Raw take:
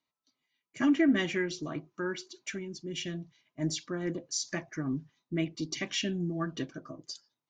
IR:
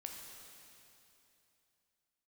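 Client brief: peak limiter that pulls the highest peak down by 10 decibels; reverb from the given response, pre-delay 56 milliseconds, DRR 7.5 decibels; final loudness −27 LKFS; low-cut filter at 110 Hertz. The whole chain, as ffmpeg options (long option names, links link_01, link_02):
-filter_complex "[0:a]highpass=110,alimiter=level_in=2dB:limit=-24dB:level=0:latency=1,volume=-2dB,asplit=2[link_01][link_02];[1:a]atrim=start_sample=2205,adelay=56[link_03];[link_02][link_03]afir=irnorm=-1:irlink=0,volume=-4.5dB[link_04];[link_01][link_04]amix=inputs=2:normalize=0,volume=9.5dB"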